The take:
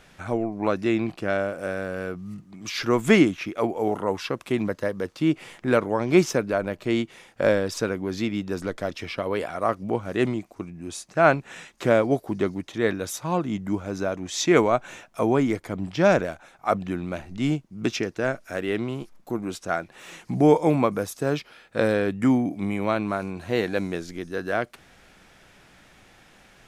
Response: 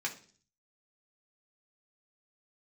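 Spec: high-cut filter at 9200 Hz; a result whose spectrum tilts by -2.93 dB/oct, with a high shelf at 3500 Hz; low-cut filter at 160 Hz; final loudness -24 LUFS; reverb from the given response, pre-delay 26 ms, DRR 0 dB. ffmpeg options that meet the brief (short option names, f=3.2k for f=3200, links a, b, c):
-filter_complex "[0:a]highpass=160,lowpass=9.2k,highshelf=f=3.5k:g=-8.5,asplit=2[a][b];[1:a]atrim=start_sample=2205,adelay=26[c];[b][c]afir=irnorm=-1:irlink=0,volume=-4dB[d];[a][d]amix=inputs=2:normalize=0"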